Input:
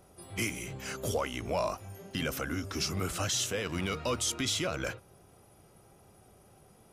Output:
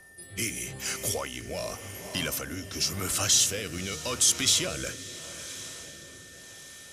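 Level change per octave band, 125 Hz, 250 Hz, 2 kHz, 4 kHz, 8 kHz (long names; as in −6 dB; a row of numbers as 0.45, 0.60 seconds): −1.0, −1.0, +2.0, +7.0, +10.5 decibels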